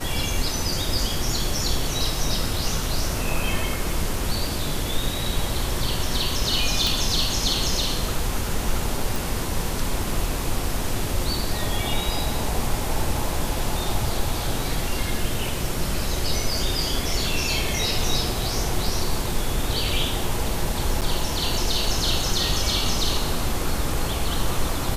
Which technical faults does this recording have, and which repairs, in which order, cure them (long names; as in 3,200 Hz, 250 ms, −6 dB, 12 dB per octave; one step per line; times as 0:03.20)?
0:06.87: click
0:09.16: click
0:21.01–0:21.02: drop-out 8 ms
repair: click removal
repair the gap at 0:21.01, 8 ms